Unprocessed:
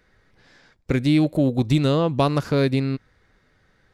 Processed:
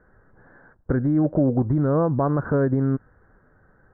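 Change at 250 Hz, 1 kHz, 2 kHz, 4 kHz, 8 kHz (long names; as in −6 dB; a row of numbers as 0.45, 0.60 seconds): −1.0 dB, −1.5 dB, −5.5 dB, below −40 dB, below −35 dB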